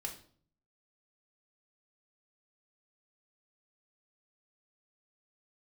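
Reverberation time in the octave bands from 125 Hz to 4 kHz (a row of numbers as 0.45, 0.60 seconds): 0.85, 0.70, 0.55, 0.45, 0.40, 0.40 seconds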